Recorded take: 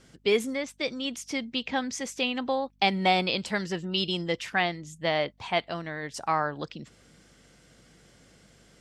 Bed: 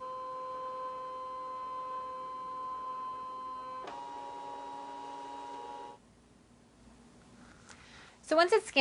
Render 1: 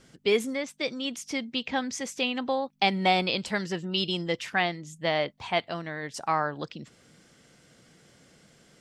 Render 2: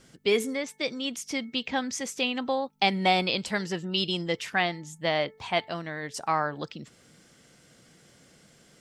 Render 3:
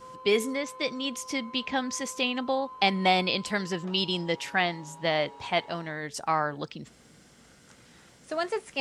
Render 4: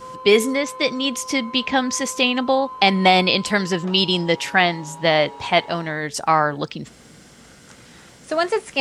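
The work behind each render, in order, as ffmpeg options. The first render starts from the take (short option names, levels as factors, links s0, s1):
-af "bandreject=f=50:t=h:w=4,bandreject=f=100:t=h:w=4"
-af "highshelf=f=8300:g=5.5,bandreject=f=439.2:t=h:w=4,bandreject=f=878.4:t=h:w=4,bandreject=f=1317.6:t=h:w=4,bandreject=f=1756.8:t=h:w=4,bandreject=f=2196:t=h:w=4"
-filter_complex "[1:a]volume=0.596[s0];[0:a][s0]amix=inputs=2:normalize=0"
-af "volume=2.99,alimiter=limit=0.794:level=0:latency=1"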